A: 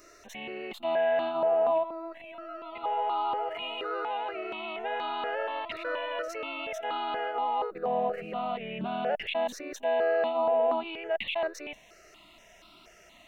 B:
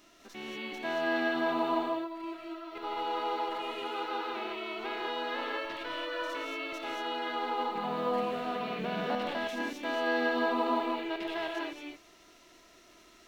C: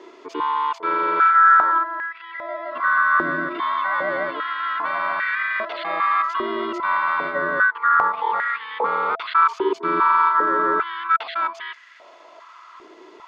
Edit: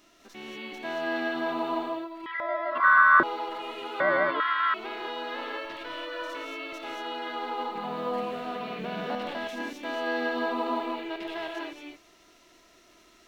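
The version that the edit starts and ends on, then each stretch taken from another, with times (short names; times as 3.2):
B
2.26–3.23 from C
4–4.74 from C
not used: A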